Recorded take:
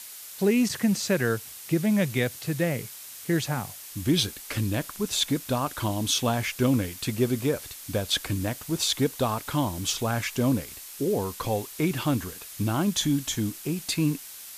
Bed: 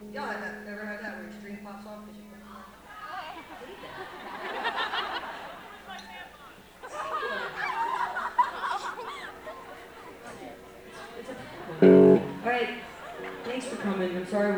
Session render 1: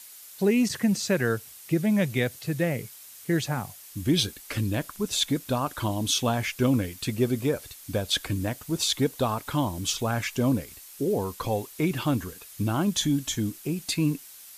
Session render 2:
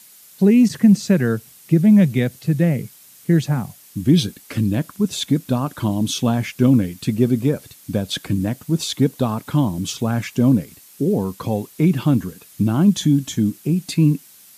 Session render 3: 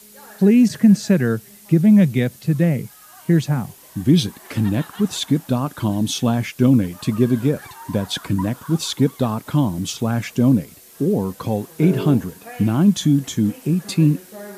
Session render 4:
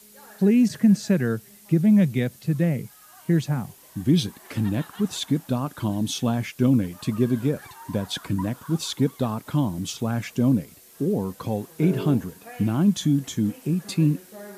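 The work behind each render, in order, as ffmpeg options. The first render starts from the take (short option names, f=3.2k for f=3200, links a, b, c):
-af "afftdn=nr=6:nf=-43"
-af "highpass=81,equalizer=f=180:w=0.78:g=13"
-filter_complex "[1:a]volume=-10dB[a];[0:a][a]amix=inputs=2:normalize=0"
-af "volume=-5dB"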